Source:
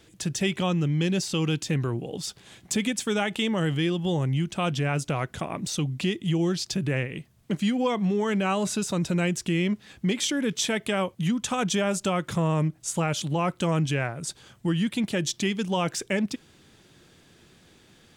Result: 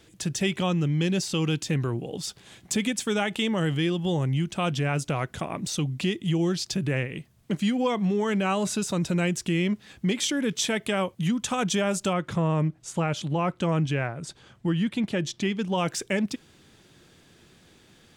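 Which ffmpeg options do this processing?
-filter_complex "[0:a]asettb=1/sr,asplit=3[s0][s1][s2];[s0]atrim=end=12.134[s3];[s1]atrim=start=12.13:end=15.78,asetpts=PTS-STARTPTS,afade=t=in:d=0.004:c=qsin,afade=t=out:st=3.646:d=0.004:c=qsin,aemphasis=mode=reproduction:type=50kf[s4];[s2]atrim=start=15.776[s5];[s3][s4]acrossfade=d=0.004:c1=hsin:c2=qsin[s6];[s6][s5]acrossfade=d=0.004:c1=qsin:c2=hsin"

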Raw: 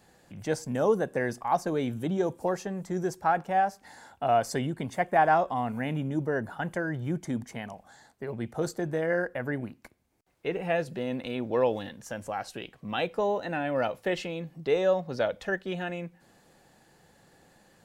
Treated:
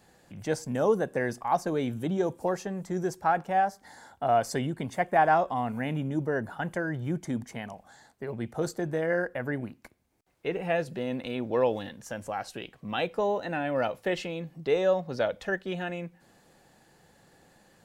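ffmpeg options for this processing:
-filter_complex "[0:a]asettb=1/sr,asplit=3[s0][s1][s2];[s0]atrim=end=3.664[s3];[s1]atrim=start=3.66:end=4.37,asetpts=PTS-STARTPTS,afade=t=in:d=0.004:c=qsin,afade=t=out:st=0.706:d=0.004:c=qsin,equalizer=f=2600:w=6.6:g=-11.5[s4];[s2]atrim=start=4.366[s5];[s3][s4]acrossfade=d=0.004:c1=hsin:c2=qsin[s6];[s6][s5]acrossfade=d=0.004:c1=qsin:c2=hsin"

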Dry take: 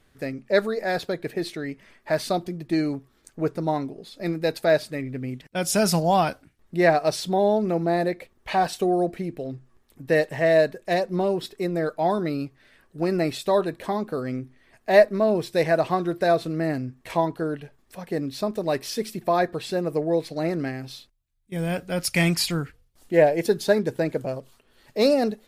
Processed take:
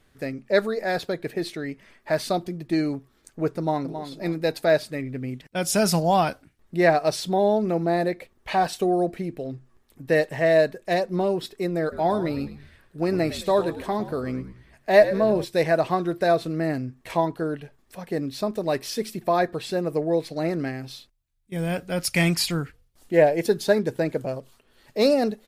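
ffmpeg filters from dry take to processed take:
-filter_complex "[0:a]asplit=2[s0][s1];[s1]afade=t=in:st=3.57:d=0.01,afade=t=out:st=4.07:d=0.01,aecho=0:1:270|540|810:0.334965|0.0837414|0.0209353[s2];[s0][s2]amix=inputs=2:normalize=0,asplit=3[s3][s4][s5];[s3]afade=t=out:st=11.91:d=0.02[s6];[s4]asplit=5[s7][s8][s9][s10][s11];[s8]adelay=106,afreqshift=-67,volume=0.224[s12];[s9]adelay=212,afreqshift=-134,volume=0.0966[s13];[s10]adelay=318,afreqshift=-201,volume=0.0412[s14];[s11]adelay=424,afreqshift=-268,volume=0.0178[s15];[s7][s12][s13][s14][s15]amix=inputs=5:normalize=0,afade=t=in:st=11.91:d=0.02,afade=t=out:st=15.43:d=0.02[s16];[s5]afade=t=in:st=15.43:d=0.02[s17];[s6][s16][s17]amix=inputs=3:normalize=0"

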